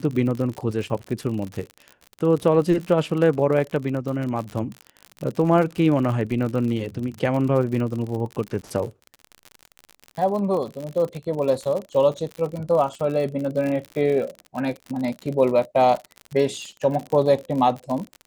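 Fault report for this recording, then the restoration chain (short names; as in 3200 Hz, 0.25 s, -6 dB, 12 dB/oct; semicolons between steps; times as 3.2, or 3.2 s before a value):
crackle 59/s -28 dBFS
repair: de-click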